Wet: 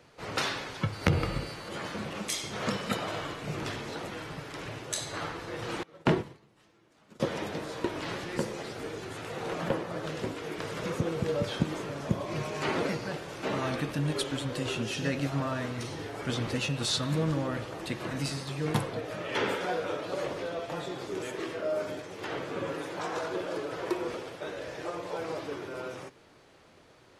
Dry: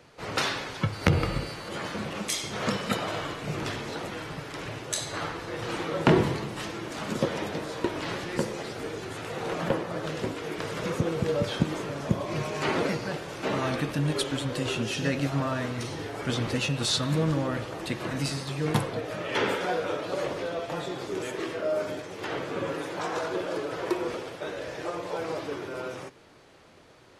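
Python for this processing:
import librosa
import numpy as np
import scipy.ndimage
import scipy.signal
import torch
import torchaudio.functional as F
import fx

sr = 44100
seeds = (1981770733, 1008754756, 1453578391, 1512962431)

y = fx.upward_expand(x, sr, threshold_db=-33.0, expansion=2.5, at=(5.83, 7.2))
y = y * 10.0 ** (-3.0 / 20.0)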